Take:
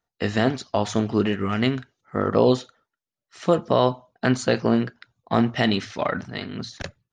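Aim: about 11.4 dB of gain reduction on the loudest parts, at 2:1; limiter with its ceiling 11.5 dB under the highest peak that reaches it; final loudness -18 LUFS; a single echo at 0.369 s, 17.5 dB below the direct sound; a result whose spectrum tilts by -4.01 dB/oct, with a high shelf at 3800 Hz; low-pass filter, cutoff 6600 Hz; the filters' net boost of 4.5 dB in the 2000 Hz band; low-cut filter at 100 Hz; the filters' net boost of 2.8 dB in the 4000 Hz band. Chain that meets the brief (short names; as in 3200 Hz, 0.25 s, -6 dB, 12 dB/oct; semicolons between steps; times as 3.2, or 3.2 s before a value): HPF 100 Hz; LPF 6600 Hz; bell 2000 Hz +6 dB; high shelf 3800 Hz -8.5 dB; bell 4000 Hz +6.5 dB; compressor 2:1, threshold -34 dBFS; limiter -23.5 dBFS; echo 0.369 s -17.5 dB; gain +19 dB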